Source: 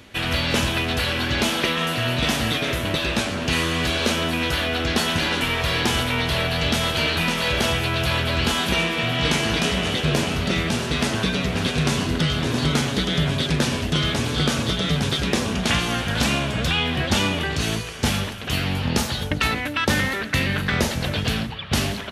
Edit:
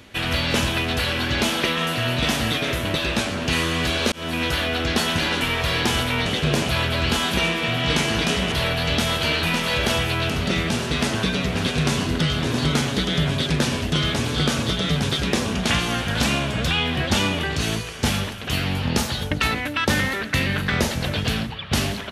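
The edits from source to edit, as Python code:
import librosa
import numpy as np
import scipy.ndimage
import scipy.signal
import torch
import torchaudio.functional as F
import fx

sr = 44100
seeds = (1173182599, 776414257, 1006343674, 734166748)

y = fx.edit(x, sr, fx.fade_in_span(start_s=4.12, length_s=0.35, curve='qsin'),
    fx.swap(start_s=6.26, length_s=1.78, other_s=9.87, other_length_s=0.43), tone=tone)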